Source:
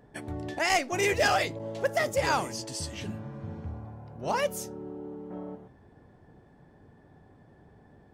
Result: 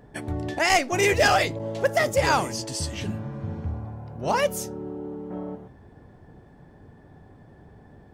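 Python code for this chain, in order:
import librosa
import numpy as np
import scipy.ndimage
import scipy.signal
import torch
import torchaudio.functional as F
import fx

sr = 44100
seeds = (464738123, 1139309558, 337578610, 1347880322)

y = fx.low_shelf(x, sr, hz=99.0, db=5.0)
y = F.gain(torch.from_numpy(y), 5.0).numpy()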